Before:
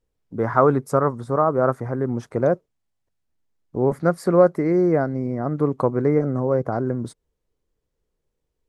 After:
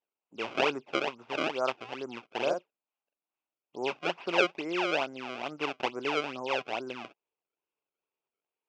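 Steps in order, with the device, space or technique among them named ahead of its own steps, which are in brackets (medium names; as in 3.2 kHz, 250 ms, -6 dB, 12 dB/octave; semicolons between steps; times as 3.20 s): circuit-bent sampling toy (decimation with a swept rate 28×, swing 160% 2.3 Hz; cabinet simulation 470–4600 Hz, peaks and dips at 490 Hz -5 dB, 900 Hz +3 dB, 1.8 kHz -8 dB, 2.6 kHz +9 dB, 4.1 kHz -8 dB); 2.32–3.76 s: doubling 44 ms -3 dB; trim -7 dB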